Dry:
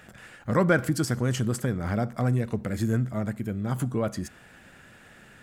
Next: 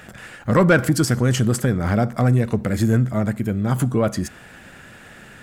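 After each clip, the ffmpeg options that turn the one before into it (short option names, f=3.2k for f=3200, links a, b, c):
-af "asoftclip=type=tanh:threshold=-14dB,volume=8.5dB"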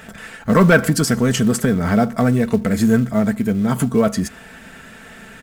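-filter_complex "[0:a]aecho=1:1:4.5:0.57,asplit=2[a][b];[b]acrusher=bits=5:mode=log:mix=0:aa=0.000001,volume=-5.5dB[c];[a][c]amix=inputs=2:normalize=0,volume=-1.5dB"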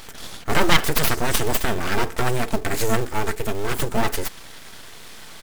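-af "tiltshelf=f=1.5k:g=-5,aeval=exprs='abs(val(0))':c=same,volume=1.5dB"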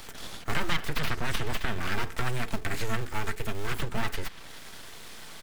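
-filter_complex "[0:a]acrossover=split=210|1100|4200[a][b][c][d];[a]acompressor=threshold=-19dB:ratio=4[e];[b]acompressor=threshold=-37dB:ratio=4[f];[c]acompressor=threshold=-27dB:ratio=4[g];[d]acompressor=threshold=-43dB:ratio=4[h];[e][f][g][h]amix=inputs=4:normalize=0,volume=-3.5dB"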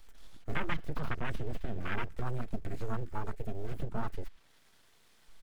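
-af "afwtdn=0.0282,volume=-4dB"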